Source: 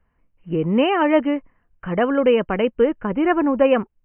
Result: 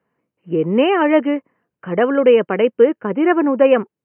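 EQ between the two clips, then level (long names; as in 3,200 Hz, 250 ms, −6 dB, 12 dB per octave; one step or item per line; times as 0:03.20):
high-pass filter 130 Hz 24 dB per octave
dynamic equaliser 1,900 Hz, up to +4 dB, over −34 dBFS, Q 0.99
parametric band 420 Hz +7 dB 0.97 octaves
−1.0 dB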